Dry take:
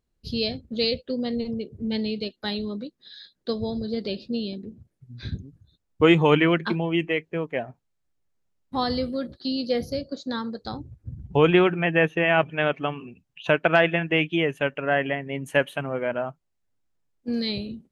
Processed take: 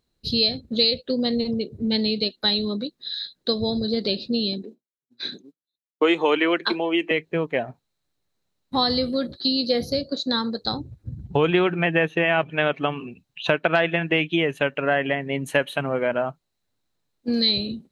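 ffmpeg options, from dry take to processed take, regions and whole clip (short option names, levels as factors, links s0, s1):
-filter_complex "[0:a]asettb=1/sr,asplit=3[s0][s1][s2];[s0]atrim=end=4.634[s3];[s1]atrim=start=4.63:end=7.11,asetpts=PTS-STARTPTS,afade=t=in:d=0.004:c=qsin,afade=t=out:st=2.476:d=0.004:c=qsin,highpass=f=290:w=0.5412,highpass=f=290:w=1.3066,agate=range=0.0224:threshold=0.00355:ratio=3:release=100:detection=peak[s4];[s2]atrim=start=7.106[s5];[s3][s4]acrossfade=d=0.004:c1=hsin:c2=qsin[s6];[s6][s5]acrossfade=d=0.004:c1=qsin:c2=hsin,equalizer=f=4000:t=o:w=0.23:g=11.5,acompressor=threshold=0.0631:ratio=2.5,lowshelf=f=67:g=-9.5,volume=1.88"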